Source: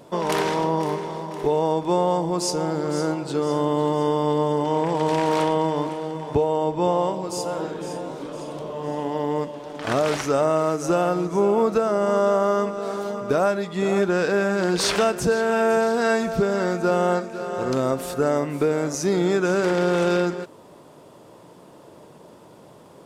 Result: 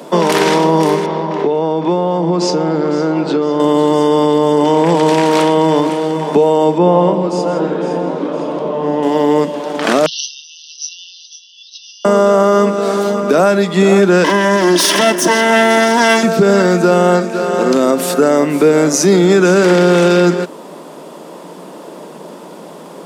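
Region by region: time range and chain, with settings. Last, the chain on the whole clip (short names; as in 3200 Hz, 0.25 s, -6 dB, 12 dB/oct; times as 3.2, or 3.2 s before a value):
1.06–3.6 air absorption 170 m + compressor 5:1, threshold -23 dBFS
6.78–9.03 tape spacing loss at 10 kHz 23 dB + echo 0.16 s -11 dB
10.06–12.05 comb 7.3 ms, depth 37% + compressor 2:1, threshold -23 dBFS + brick-wall FIR band-pass 2700–6200 Hz
14.24–16.23 minimum comb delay 3 ms + ripple EQ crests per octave 1.2, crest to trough 8 dB
whole clip: steep high-pass 160 Hz 72 dB/oct; dynamic EQ 870 Hz, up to -4 dB, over -32 dBFS, Q 0.75; maximiser +16 dB; gain -1 dB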